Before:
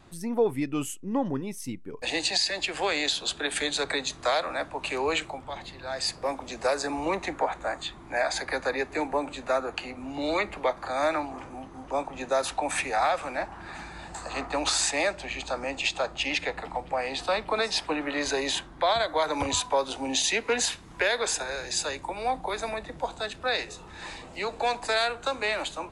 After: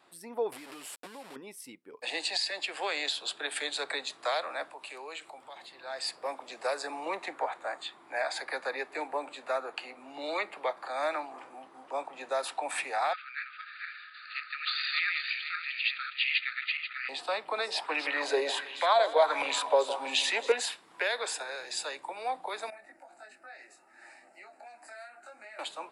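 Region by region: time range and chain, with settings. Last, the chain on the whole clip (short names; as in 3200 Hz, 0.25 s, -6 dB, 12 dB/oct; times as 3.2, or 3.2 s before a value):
0.52–1.36 delta modulation 64 kbps, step -27.5 dBFS + compressor 5:1, threshold -33 dBFS
4.7–5.72 high shelf 5900 Hz +8.5 dB + compressor 2:1, threshold -41 dBFS
13.13–17.09 regenerating reverse delay 0.243 s, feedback 50%, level -2.5 dB + brick-wall FIR band-pass 1200–4800 Hz + dynamic EQ 2200 Hz, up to +5 dB, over -42 dBFS, Q 2
17.67–20.52 split-band echo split 2800 Hz, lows 0.161 s, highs 0.273 s, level -12 dB + LFO bell 1.4 Hz 430–2700 Hz +12 dB
22.7–25.59 compressor 4:1, threshold -34 dBFS + fixed phaser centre 690 Hz, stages 8 + detuned doubles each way 11 cents
whole clip: HPF 470 Hz 12 dB/oct; bell 6300 Hz -10.5 dB 0.24 oct; gain -4.5 dB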